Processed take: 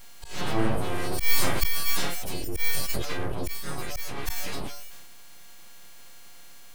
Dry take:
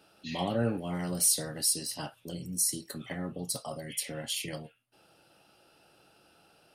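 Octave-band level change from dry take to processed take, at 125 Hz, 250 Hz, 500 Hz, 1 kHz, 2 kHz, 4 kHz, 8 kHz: +3.5, +1.5, +3.0, +7.0, +11.5, +3.5, −5.0 decibels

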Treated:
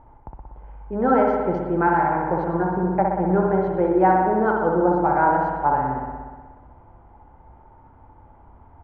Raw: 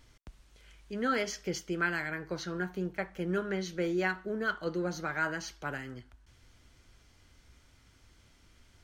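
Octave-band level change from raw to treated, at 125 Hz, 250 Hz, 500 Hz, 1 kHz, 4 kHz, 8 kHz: +13.0 dB, +13.0 dB, +14.5 dB, +20.0 dB, below −15 dB, below −25 dB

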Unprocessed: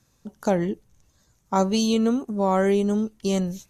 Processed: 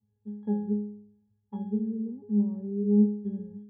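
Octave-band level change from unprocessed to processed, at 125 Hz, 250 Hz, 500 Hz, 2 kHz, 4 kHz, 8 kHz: can't be measured, −3.0 dB, −12.0 dB, below −30 dB, below −40 dB, below −40 dB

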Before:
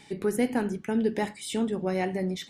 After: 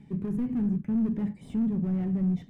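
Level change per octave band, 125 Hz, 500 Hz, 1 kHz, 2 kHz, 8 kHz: +6.0 dB, −13.0 dB, −16.0 dB, below −15 dB, below −25 dB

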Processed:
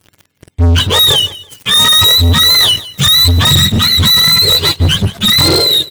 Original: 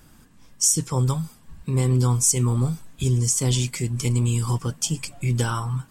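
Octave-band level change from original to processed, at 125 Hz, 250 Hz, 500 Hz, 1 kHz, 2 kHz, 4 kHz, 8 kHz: +7.0, +8.5, +11.5, +14.5, +21.0, +29.0, +5.5 decibels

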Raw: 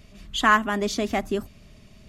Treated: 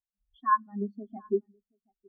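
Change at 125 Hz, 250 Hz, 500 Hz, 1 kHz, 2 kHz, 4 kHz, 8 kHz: can't be measured, −9.0 dB, −5.5 dB, −5.0 dB, −18.5 dB, below −35 dB, below −40 dB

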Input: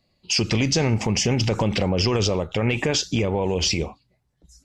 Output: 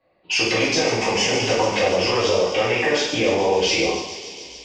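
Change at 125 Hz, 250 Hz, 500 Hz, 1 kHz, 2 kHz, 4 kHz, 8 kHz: −9.0, −1.5, +6.0, +7.5, +7.5, +3.0, +0.5 decibels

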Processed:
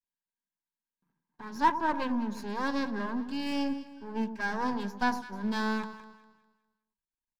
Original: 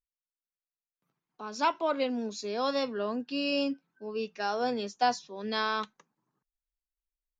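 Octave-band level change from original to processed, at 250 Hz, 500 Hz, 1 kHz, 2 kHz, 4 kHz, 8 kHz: +3.5 dB, −7.5 dB, +0.5 dB, +2.0 dB, −6.5 dB, can't be measured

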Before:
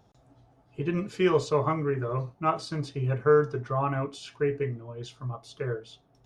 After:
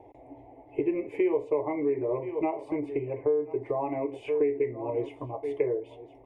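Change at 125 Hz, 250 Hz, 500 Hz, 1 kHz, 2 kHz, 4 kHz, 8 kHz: −13.5 dB, +1.0 dB, +0.5 dB, −6.0 dB, −8.5 dB, below −15 dB, can't be measured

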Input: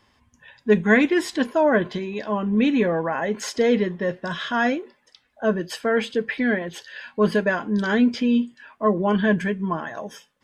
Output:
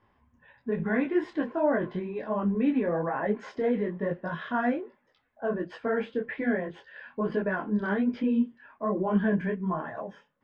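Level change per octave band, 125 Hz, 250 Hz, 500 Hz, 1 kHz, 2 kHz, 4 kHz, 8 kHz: −5.5 dB, −6.0 dB, −7.0 dB, −6.5 dB, −10.0 dB, −18.5 dB, below −25 dB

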